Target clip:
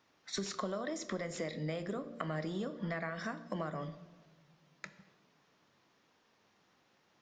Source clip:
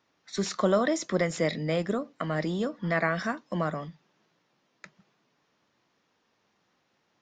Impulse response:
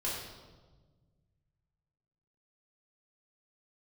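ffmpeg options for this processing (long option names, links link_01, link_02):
-filter_complex "[0:a]bandreject=frequency=58.57:width_type=h:width=4,bandreject=frequency=117.14:width_type=h:width=4,bandreject=frequency=175.71:width_type=h:width=4,bandreject=frequency=234.28:width_type=h:width=4,bandreject=frequency=292.85:width_type=h:width=4,bandreject=frequency=351.42:width_type=h:width=4,bandreject=frequency=409.99:width_type=h:width=4,bandreject=frequency=468.56:width_type=h:width=4,bandreject=frequency=527.13:width_type=h:width=4,bandreject=frequency=585.7:width_type=h:width=4,acompressor=threshold=-36dB:ratio=10,asplit=2[link_01][link_02];[1:a]atrim=start_sample=2205,adelay=26[link_03];[link_02][link_03]afir=irnorm=-1:irlink=0,volume=-17dB[link_04];[link_01][link_04]amix=inputs=2:normalize=0,volume=1dB"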